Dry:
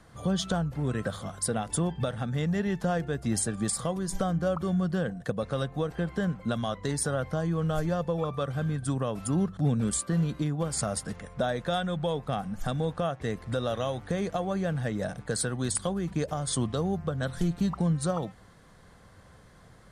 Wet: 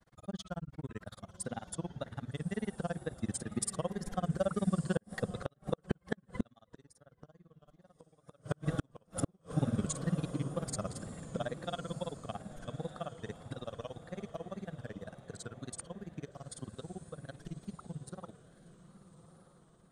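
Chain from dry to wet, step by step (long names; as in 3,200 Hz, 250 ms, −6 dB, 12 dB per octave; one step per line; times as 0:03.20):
source passing by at 0:06.98, 5 m/s, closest 4.4 metres
granular cloud 43 ms, grains 18 per second, spray 15 ms, pitch spread up and down by 0 semitones
feedback delay with all-pass diffusion 1,237 ms, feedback 41%, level −13 dB
gate with flip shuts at −28 dBFS, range −36 dB
tape wow and flutter 75 cents
level +9.5 dB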